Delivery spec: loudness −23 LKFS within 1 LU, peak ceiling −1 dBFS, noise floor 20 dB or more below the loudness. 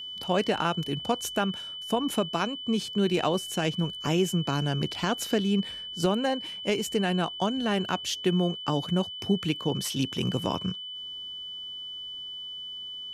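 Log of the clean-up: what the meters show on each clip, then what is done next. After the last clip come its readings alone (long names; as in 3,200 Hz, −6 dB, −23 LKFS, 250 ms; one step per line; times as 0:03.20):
interfering tone 3,000 Hz; level of the tone −36 dBFS; integrated loudness −28.5 LKFS; sample peak −12.0 dBFS; target loudness −23.0 LKFS
→ notch filter 3,000 Hz, Q 30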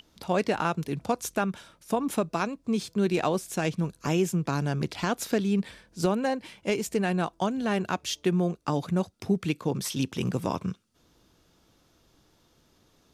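interfering tone none found; integrated loudness −29.0 LKFS; sample peak −12.5 dBFS; target loudness −23.0 LKFS
→ level +6 dB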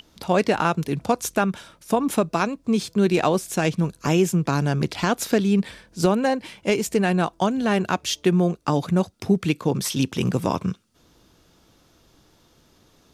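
integrated loudness −22.5 LKFS; sample peak −6.5 dBFS; background noise floor −59 dBFS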